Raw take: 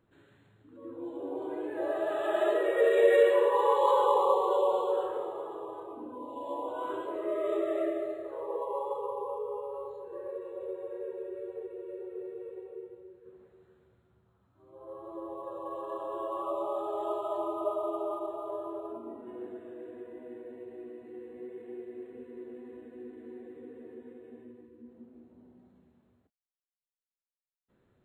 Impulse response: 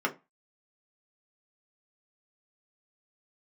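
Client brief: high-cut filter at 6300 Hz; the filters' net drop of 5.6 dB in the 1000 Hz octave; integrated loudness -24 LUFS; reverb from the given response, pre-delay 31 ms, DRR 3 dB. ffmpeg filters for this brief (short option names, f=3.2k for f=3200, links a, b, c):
-filter_complex "[0:a]lowpass=6.3k,equalizer=f=1k:t=o:g=-6.5,asplit=2[a][b];[1:a]atrim=start_sample=2205,adelay=31[c];[b][c]afir=irnorm=-1:irlink=0,volume=-12.5dB[d];[a][d]amix=inputs=2:normalize=0,volume=7.5dB"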